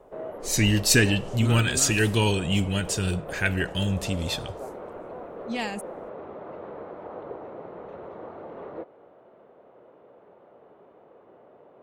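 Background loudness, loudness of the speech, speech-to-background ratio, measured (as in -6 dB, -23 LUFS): -39.0 LUFS, -24.0 LUFS, 15.0 dB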